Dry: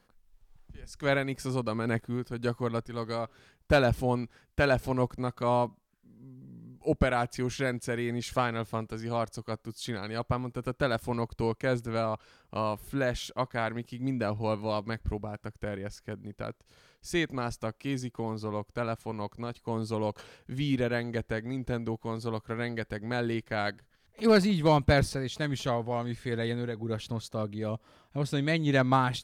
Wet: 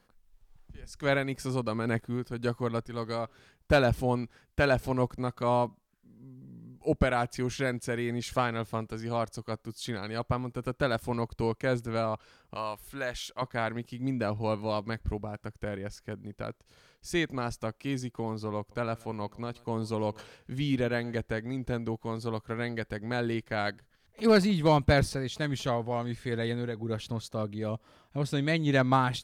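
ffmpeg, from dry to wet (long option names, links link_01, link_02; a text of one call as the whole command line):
ffmpeg -i in.wav -filter_complex "[0:a]asettb=1/sr,asplit=3[link_01][link_02][link_03];[link_01]atrim=end=12.554[link_04];[link_02]atrim=start=12.55:end=13.42,asetpts=PTS-STARTPTS,afade=type=in:duration=0.004:curve=qsin,afade=type=out:start_time=0.866:duration=0.004:curve=qsin,equalizer=frequency=160:width=0.33:gain=-12[link_05];[link_03]atrim=start=13.416[link_06];[link_04][link_05]acrossfade=duration=0.004:curve1=hsin:curve2=qsin[link_07];[link_07][link_06]acrossfade=duration=0.004:curve1=qsin:curve2=hsin,asettb=1/sr,asplit=3[link_08][link_09][link_10];[link_08]atrim=end=18.584[link_11];[link_09]atrim=start=18.58:end=21.21,asetpts=PTS-STARTPTS,afade=type=in:duration=0.004:curve=qsin,afade=type=out:start_time=2.626:duration=0.004:curve=qsin,aecho=1:1:131:0.0631,atrim=end_sample=115983[link_12];[link_10]atrim=start=21.206[link_13];[link_11][link_12]acrossfade=duration=0.004:curve1=hsin:curve2=qsin[link_14];[link_14][link_13]acrossfade=duration=0.004:curve1=qsin:curve2=hsin" out.wav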